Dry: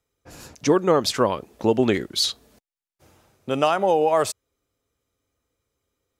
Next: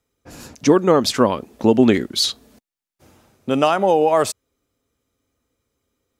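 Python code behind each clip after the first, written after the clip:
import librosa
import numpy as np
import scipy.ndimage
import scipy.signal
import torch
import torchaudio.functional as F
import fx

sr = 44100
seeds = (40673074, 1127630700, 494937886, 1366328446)

y = fx.peak_eq(x, sr, hz=240.0, db=6.5, octaves=0.59)
y = y * 10.0 ** (3.0 / 20.0)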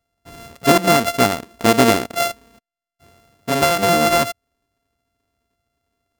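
y = np.r_[np.sort(x[:len(x) // 64 * 64].reshape(-1, 64), axis=1).ravel(), x[len(x) // 64 * 64:]]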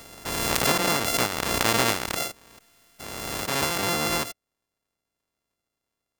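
y = fx.spec_clip(x, sr, under_db=17)
y = fx.pre_swell(y, sr, db_per_s=25.0)
y = y * 10.0 ** (-10.5 / 20.0)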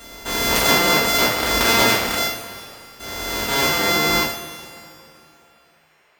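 y = fx.rev_double_slope(x, sr, seeds[0], early_s=0.41, late_s=2.9, knee_db=-18, drr_db=-6.0)
y = fx.dmg_noise_band(y, sr, seeds[1], low_hz=370.0, high_hz=2700.0, level_db=-59.0)
y = y * 10.0 ** (-1.0 / 20.0)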